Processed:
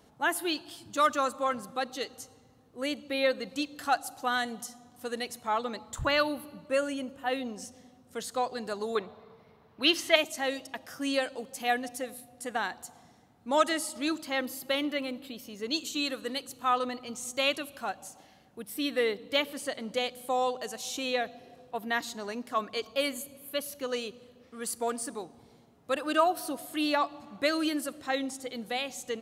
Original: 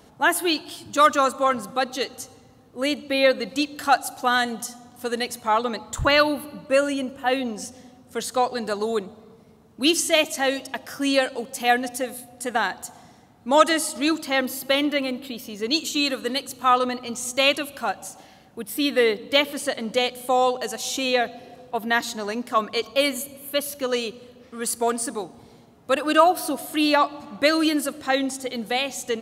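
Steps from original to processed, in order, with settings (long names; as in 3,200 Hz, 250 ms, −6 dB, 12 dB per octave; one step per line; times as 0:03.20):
0:08.95–0:10.16: graphic EQ with 10 bands 125 Hz +3 dB, 250 Hz −4 dB, 500 Hz +4 dB, 1,000 Hz +7 dB, 2,000 Hz +8 dB, 4,000 Hz +6 dB, 8,000 Hz −11 dB
level −8.5 dB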